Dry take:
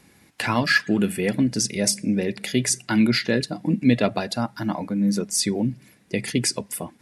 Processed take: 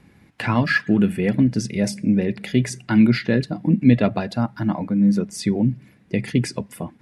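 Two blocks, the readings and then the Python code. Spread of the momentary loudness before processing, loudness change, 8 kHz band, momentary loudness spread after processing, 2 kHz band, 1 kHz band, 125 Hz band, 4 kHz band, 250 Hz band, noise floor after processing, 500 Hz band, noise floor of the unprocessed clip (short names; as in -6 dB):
9 LU, +2.5 dB, -11.0 dB, 10 LU, -0.5 dB, 0.0 dB, +6.0 dB, -6.5 dB, +4.0 dB, -54 dBFS, +0.5 dB, -57 dBFS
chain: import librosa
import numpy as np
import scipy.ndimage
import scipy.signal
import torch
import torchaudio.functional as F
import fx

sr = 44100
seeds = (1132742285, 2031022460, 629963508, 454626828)

y = fx.bass_treble(x, sr, bass_db=7, treble_db=-12)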